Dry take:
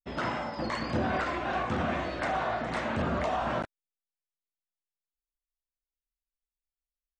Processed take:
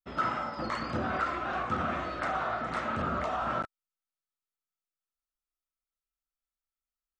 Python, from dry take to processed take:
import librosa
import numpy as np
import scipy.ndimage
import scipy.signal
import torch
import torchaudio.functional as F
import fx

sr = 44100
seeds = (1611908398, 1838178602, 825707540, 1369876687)

p1 = fx.peak_eq(x, sr, hz=1300.0, db=15.0, octaves=0.2)
p2 = fx.rider(p1, sr, range_db=10, speed_s=0.5)
p3 = p1 + (p2 * 10.0 ** (-3.0 / 20.0))
y = p3 * 10.0 ** (-8.5 / 20.0)